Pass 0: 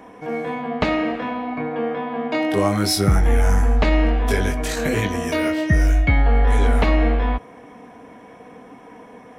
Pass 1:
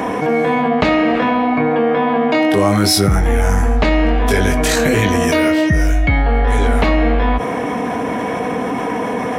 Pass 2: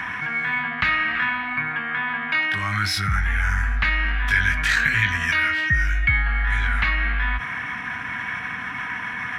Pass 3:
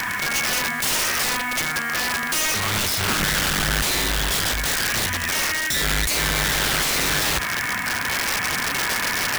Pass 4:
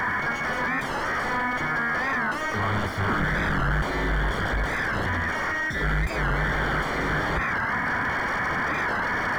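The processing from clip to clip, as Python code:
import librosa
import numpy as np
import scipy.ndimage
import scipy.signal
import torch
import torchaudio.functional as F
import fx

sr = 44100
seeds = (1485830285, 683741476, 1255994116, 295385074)

y1 = scipy.signal.sosfilt(scipy.signal.butter(2, 56.0, 'highpass', fs=sr, output='sos'), x)
y1 = fx.env_flatten(y1, sr, amount_pct=70)
y1 = F.gain(torch.from_numpy(y1), 1.5).numpy()
y2 = fx.curve_eq(y1, sr, hz=(120.0, 500.0, 1600.0, 8800.0), db=(0, -26, 13, -9))
y2 = F.gain(torch.from_numpy(y2), -8.0).numpy()
y3 = fx.rider(y2, sr, range_db=5, speed_s=2.0)
y3 = (np.mod(10.0 ** (18.5 / 20.0) * y3 + 1.0, 2.0) - 1.0) / 10.0 ** (18.5 / 20.0)
y3 = fx.quant_dither(y3, sr, seeds[0], bits=6, dither='none')
y3 = F.gain(torch.from_numpy(y3), 1.5).numpy()
y4 = 10.0 ** (-29.5 / 20.0) * np.tanh(y3 / 10.0 ** (-29.5 / 20.0))
y4 = scipy.signal.savgol_filter(y4, 41, 4, mode='constant')
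y4 = fx.record_warp(y4, sr, rpm=45.0, depth_cents=160.0)
y4 = F.gain(torch.from_numpy(y4), 9.0).numpy()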